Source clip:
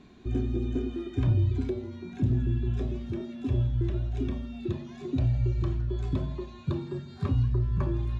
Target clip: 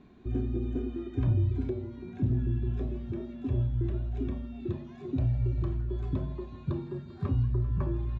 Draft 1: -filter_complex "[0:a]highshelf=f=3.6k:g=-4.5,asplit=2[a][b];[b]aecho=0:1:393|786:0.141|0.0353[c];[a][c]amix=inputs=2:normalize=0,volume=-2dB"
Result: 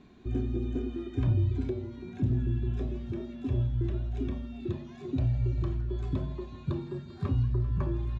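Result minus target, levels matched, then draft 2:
4000 Hz band +5.0 dB
-filter_complex "[0:a]highshelf=f=3.6k:g=-14.5,asplit=2[a][b];[b]aecho=0:1:393|786:0.141|0.0353[c];[a][c]amix=inputs=2:normalize=0,volume=-2dB"

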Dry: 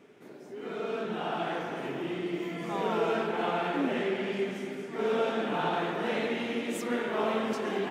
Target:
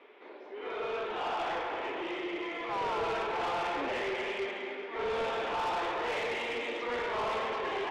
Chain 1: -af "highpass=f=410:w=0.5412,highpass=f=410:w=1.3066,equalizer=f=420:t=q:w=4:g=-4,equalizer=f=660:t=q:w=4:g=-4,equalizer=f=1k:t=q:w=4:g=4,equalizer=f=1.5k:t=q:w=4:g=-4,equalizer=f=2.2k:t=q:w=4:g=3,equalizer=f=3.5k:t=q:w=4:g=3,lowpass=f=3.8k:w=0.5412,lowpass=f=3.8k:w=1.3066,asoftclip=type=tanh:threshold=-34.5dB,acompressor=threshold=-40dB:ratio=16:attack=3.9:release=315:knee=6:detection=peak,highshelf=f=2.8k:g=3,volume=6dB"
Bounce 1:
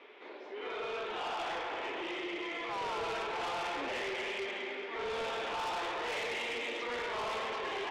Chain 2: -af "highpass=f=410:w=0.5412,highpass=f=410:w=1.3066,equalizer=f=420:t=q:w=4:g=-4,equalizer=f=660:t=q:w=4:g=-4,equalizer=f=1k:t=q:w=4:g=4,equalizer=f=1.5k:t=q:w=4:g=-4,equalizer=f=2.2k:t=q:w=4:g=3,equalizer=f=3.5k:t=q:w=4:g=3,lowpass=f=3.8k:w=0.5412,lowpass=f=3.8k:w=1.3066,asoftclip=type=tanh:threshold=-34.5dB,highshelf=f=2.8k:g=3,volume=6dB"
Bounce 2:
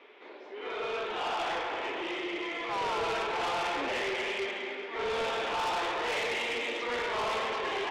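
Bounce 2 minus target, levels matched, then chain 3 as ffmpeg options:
4000 Hz band +3.5 dB
-af "highpass=f=410:w=0.5412,highpass=f=410:w=1.3066,equalizer=f=420:t=q:w=4:g=-4,equalizer=f=660:t=q:w=4:g=-4,equalizer=f=1k:t=q:w=4:g=4,equalizer=f=1.5k:t=q:w=4:g=-4,equalizer=f=2.2k:t=q:w=4:g=3,equalizer=f=3.5k:t=q:w=4:g=3,lowpass=f=3.8k:w=0.5412,lowpass=f=3.8k:w=1.3066,asoftclip=type=tanh:threshold=-34.5dB,highshelf=f=2.8k:g=-6,volume=6dB"

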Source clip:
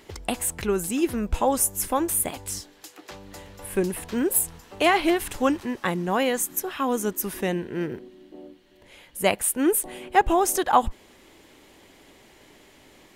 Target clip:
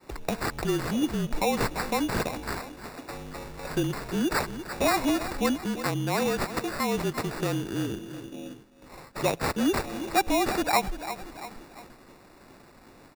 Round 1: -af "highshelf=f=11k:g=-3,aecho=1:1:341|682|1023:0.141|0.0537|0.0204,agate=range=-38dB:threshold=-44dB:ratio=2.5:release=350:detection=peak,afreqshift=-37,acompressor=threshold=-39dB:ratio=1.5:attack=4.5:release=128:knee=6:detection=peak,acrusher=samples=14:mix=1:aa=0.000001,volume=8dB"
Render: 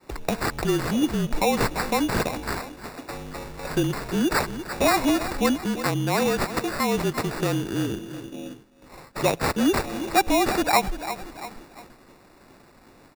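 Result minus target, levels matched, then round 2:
compressor: peak gain reduction -4 dB
-af "highshelf=f=11k:g=-3,aecho=1:1:341|682|1023:0.141|0.0537|0.0204,agate=range=-38dB:threshold=-44dB:ratio=2.5:release=350:detection=peak,afreqshift=-37,acompressor=threshold=-50.5dB:ratio=1.5:attack=4.5:release=128:knee=6:detection=peak,acrusher=samples=14:mix=1:aa=0.000001,volume=8dB"

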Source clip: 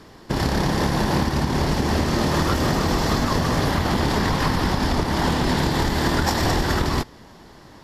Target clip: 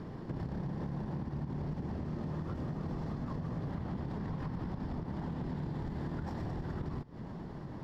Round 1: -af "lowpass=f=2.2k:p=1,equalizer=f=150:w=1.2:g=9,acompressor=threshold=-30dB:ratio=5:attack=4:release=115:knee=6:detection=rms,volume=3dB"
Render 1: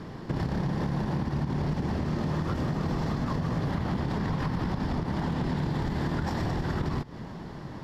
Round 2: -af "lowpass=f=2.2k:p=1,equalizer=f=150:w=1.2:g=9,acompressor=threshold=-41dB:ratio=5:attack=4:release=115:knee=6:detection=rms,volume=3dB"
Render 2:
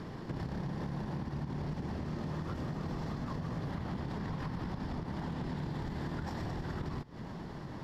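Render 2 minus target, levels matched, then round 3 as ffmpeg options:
2000 Hz band +5.0 dB
-af "lowpass=f=770:p=1,equalizer=f=150:w=1.2:g=9,acompressor=threshold=-41dB:ratio=5:attack=4:release=115:knee=6:detection=rms,volume=3dB"

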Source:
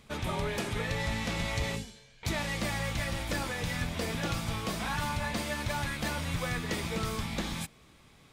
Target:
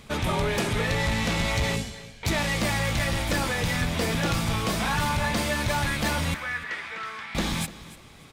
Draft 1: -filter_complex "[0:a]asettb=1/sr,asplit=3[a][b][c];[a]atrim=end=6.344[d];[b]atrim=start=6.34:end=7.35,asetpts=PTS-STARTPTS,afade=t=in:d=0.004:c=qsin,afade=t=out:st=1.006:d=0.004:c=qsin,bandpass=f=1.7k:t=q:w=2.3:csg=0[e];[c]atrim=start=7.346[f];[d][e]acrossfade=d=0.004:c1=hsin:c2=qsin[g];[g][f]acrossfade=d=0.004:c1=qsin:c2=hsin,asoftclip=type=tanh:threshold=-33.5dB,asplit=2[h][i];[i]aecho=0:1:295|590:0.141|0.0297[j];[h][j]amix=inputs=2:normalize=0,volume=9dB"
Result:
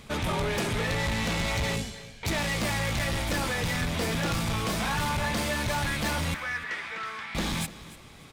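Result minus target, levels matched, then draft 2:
soft clip: distortion +7 dB
-filter_complex "[0:a]asettb=1/sr,asplit=3[a][b][c];[a]atrim=end=6.344[d];[b]atrim=start=6.34:end=7.35,asetpts=PTS-STARTPTS,afade=t=in:d=0.004:c=qsin,afade=t=out:st=1.006:d=0.004:c=qsin,bandpass=f=1.7k:t=q:w=2.3:csg=0[e];[c]atrim=start=7.346[f];[d][e]acrossfade=d=0.004:c1=hsin:c2=qsin[g];[g][f]acrossfade=d=0.004:c1=qsin:c2=hsin,asoftclip=type=tanh:threshold=-27.5dB,asplit=2[h][i];[i]aecho=0:1:295|590:0.141|0.0297[j];[h][j]amix=inputs=2:normalize=0,volume=9dB"

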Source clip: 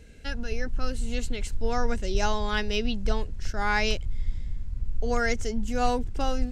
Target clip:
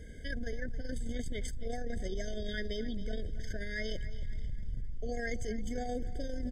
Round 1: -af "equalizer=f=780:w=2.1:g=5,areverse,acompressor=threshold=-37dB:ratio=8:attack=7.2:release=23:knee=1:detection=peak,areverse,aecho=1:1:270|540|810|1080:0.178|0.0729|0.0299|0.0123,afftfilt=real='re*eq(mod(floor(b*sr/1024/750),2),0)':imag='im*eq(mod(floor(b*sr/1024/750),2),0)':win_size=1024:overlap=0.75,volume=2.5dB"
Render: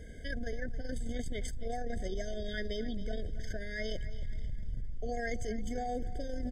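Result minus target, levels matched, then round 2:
1000 Hz band +5.0 dB
-af "equalizer=f=780:w=2.1:g=-3,areverse,acompressor=threshold=-37dB:ratio=8:attack=7.2:release=23:knee=1:detection=peak,areverse,aecho=1:1:270|540|810|1080:0.178|0.0729|0.0299|0.0123,afftfilt=real='re*eq(mod(floor(b*sr/1024/750),2),0)':imag='im*eq(mod(floor(b*sr/1024/750),2),0)':win_size=1024:overlap=0.75,volume=2.5dB"

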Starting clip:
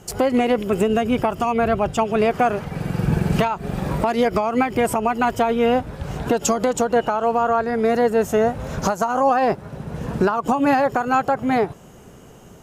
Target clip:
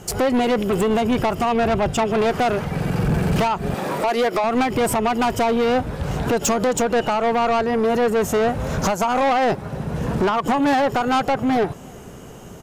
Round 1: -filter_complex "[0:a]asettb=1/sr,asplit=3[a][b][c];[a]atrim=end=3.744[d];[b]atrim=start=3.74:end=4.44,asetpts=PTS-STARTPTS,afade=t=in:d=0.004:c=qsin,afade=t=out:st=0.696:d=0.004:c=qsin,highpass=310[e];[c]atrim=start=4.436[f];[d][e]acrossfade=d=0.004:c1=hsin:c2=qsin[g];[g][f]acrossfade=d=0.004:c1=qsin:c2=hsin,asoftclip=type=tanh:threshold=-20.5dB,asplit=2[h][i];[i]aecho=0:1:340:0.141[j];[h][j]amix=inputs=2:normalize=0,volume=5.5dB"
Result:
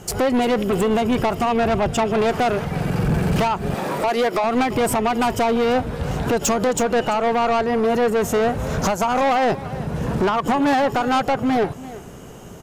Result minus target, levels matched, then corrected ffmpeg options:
echo-to-direct +10.5 dB
-filter_complex "[0:a]asettb=1/sr,asplit=3[a][b][c];[a]atrim=end=3.744[d];[b]atrim=start=3.74:end=4.44,asetpts=PTS-STARTPTS,afade=t=in:d=0.004:c=qsin,afade=t=out:st=0.696:d=0.004:c=qsin,highpass=310[e];[c]atrim=start=4.436[f];[d][e]acrossfade=d=0.004:c1=hsin:c2=qsin[g];[g][f]acrossfade=d=0.004:c1=qsin:c2=hsin,asoftclip=type=tanh:threshold=-20.5dB,asplit=2[h][i];[i]aecho=0:1:340:0.0422[j];[h][j]amix=inputs=2:normalize=0,volume=5.5dB"

